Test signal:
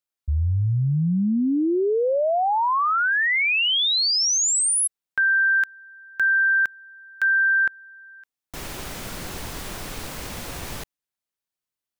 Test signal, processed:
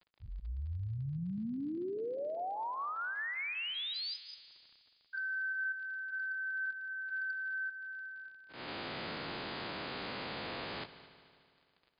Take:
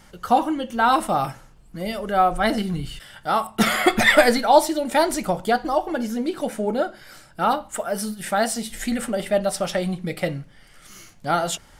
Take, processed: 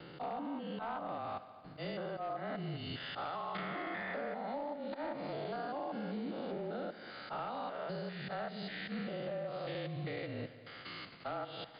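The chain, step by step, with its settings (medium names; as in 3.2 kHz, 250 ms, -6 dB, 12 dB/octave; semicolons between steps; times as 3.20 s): spectrogram pixelated in time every 200 ms; low-pass that closes with the level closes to 1.6 kHz, closed at -18.5 dBFS; high-pass 220 Hz 12 dB/octave; gate with hold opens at -44 dBFS, closes at -47 dBFS, hold 16 ms, range -21 dB; gain riding within 4 dB 0.5 s; slow attack 130 ms; compression 8:1, threshold -38 dBFS; frequency shift -30 Hz; hard clipper -34 dBFS; crackle 53 per s -50 dBFS; multi-head delay 74 ms, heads all three, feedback 62%, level -21 dB; trim +1 dB; MP3 56 kbps 11.025 kHz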